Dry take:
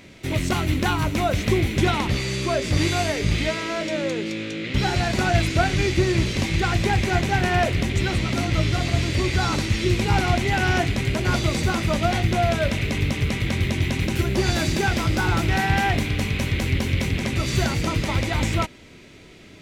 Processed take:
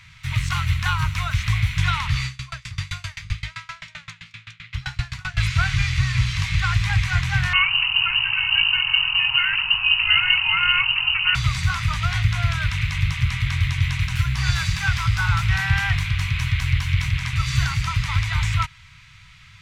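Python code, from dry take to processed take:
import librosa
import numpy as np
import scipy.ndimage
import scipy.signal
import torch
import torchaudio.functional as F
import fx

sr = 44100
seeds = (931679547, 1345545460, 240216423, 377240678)

y = fx.tremolo_decay(x, sr, direction='decaying', hz=7.7, depth_db=28, at=(2.26, 5.37))
y = fx.freq_invert(y, sr, carrier_hz=2900, at=(7.53, 11.35))
y = scipy.signal.sosfilt(scipy.signal.cheby1(3, 1.0, [130.0, 1100.0], 'bandstop', fs=sr, output='sos'), y)
y = fx.high_shelf(y, sr, hz=6500.0, db=-10.5)
y = F.gain(torch.from_numpy(y), 3.5).numpy()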